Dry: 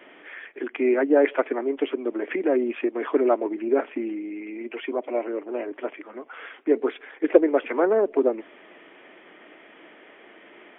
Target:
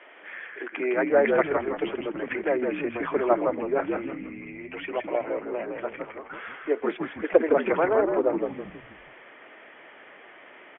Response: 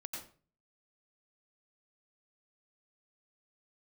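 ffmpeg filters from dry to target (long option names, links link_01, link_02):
-filter_complex "[0:a]highpass=550,lowpass=2900,asplit=2[link_01][link_02];[link_02]asplit=5[link_03][link_04][link_05][link_06][link_07];[link_03]adelay=161,afreqshift=-71,volume=-4dB[link_08];[link_04]adelay=322,afreqshift=-142,volume=-12.4dB[link_09];[link_05]adelay=483,afreqshift=-213,volume=-20.8dB[link_10];[link_06]adelay=644,afreqshift=-284,volume=-29.2dB[link_11];[link_07]adelay=805,afreqshift=-355,volume=-37.6dB[link_12];[link_08][link_09][link_10][link_11][link_12]amix=inputs=5:normalize=0[link_13];[link_01][link_13]amix=inputs=2:normalize=0,volume=1.5dB"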